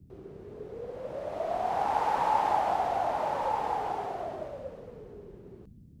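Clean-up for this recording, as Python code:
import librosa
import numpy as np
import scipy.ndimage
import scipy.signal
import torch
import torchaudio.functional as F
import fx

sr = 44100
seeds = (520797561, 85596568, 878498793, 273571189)

y = fx.noise_reduce(x, sr, print_start_s=5.49, print_end_s=5.99, reduce_db=27.0)
y = fx.fix_echo_inverse(y, sr, delay_ms=1185, level_db=-4.5)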